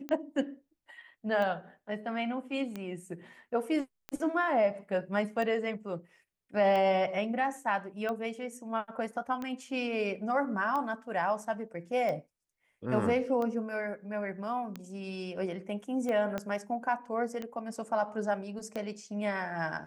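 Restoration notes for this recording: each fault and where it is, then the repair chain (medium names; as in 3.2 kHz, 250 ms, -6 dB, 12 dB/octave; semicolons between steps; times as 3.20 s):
tick 45 rpm -23 dBFS
16.38 s: pop -20 dBFS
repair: de-click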